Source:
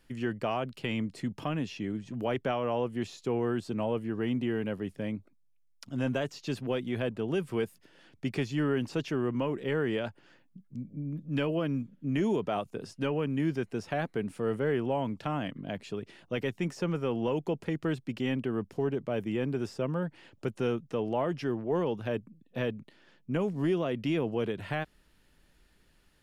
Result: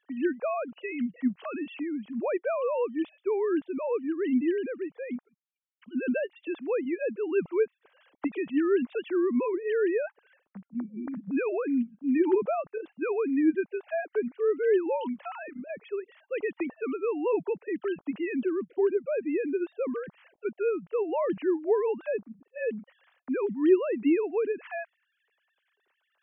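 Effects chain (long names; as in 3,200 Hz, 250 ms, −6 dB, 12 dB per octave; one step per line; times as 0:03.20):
three sine waves on the formant tracks
level +3 dB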